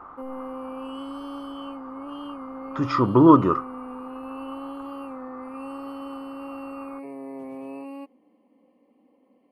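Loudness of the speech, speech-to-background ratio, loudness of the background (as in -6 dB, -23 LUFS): -18.5 LUFS, 19.0 dB, -37.5 LUFS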